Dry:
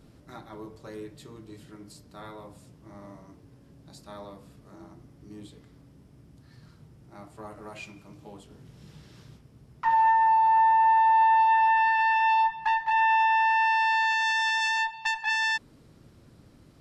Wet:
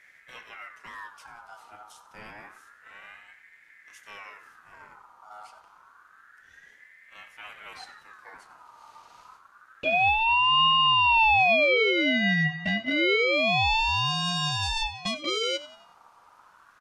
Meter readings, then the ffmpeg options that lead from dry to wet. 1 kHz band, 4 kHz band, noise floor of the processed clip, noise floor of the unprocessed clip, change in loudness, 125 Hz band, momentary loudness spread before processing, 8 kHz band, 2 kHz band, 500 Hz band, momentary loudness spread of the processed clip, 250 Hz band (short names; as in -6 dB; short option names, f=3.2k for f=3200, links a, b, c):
-5.5 dB, +11.5 dB, -57 dBFS, -56 dBFS, +0.5 dB, +12.0 dB, 11 LU, n/a, +1.5 dB, +17.0 dB, 10 LU, +13.0 dB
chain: -af "aecho=1:1:92|184|276|368:0.158|0.0713|0.0321|0.0144,aeval=exprs='val(0)*sin(2*PI*1500*n/s+1500*0.3/0.28*sin(2*PI*0.28*n/s))':c=same,volume=1dB"